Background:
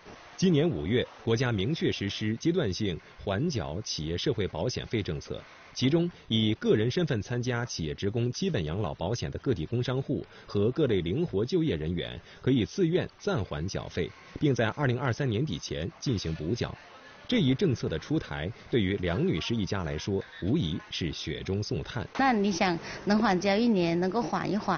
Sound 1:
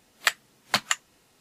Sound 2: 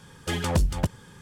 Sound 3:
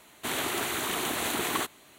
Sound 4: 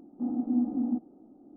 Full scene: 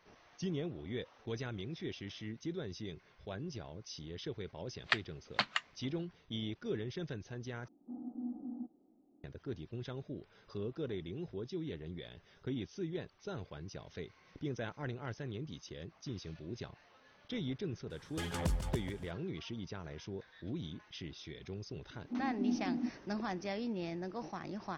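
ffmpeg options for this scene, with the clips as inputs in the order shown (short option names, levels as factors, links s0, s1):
-filter_complex "[4:a]asplit=2[s0][s1];[0:a]volume=0.2[s2];[1:a]lowpass=f=4600:w=0.5412,lowpass=f=4600:w=1.3066[s3];[2:a]aecho=1:1:144|288|432|576:0.299|0.122|0.0502|0.0206[s4];[s2]asplit=2[s5][s6];[s5]atrim=end=7.684[s7];[s0]atrim=end=1.56,asetpts=PTS-STARTPTS,volume=0.188[s8];[s6]atrim=start=9.236[s9];[s3]atrim=end=1.4,asetpts=PTS-STARTPTS,volume=0.398,afade=t=in:d=0.004:c=hsin,afade=t=out:st=1.396:d=0.004:c=hsin,adelay=205065S[s10];[s4]atrim=end=1.21,asetpts=PTS-STARTPTS,volume=0.266,afade=t=in:d=0.004:c=hsin,afade=t=out:st=1.206:d=0.004:c=hsin,adelay=17900[s11];[s1]atrim=end=1.56,asetpts=PTS-STARTPTS,volume=0.422,afade=t=in:d=0.004:c=hsin,afade=t=out:st=1.556:d=0.004:c=hsin,adelay=21910[s12];[s7][s8]acrossfade=d=0.004:c1=hsin:c2=hsin[s13];[s13][s9]acrossfade=d=0.004:c1=hsin:c2=hsin[s14];[s14][s10][s11][s12]amix=inputs=4:normalize=0"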